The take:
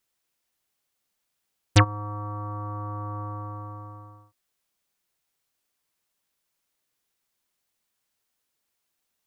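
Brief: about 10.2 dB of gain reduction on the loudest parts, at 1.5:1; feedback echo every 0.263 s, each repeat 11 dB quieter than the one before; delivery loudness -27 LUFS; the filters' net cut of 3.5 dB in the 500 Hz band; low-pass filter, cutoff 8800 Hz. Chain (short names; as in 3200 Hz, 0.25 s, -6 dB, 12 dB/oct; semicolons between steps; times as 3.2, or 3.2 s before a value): LPF 8800 Hz; bell 500 Hz -4 dB; compressor 1.5:1, threshold -42 dBFS; feedback echo 0.263 s, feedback 28%, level -11 dB; gain +10.5 dB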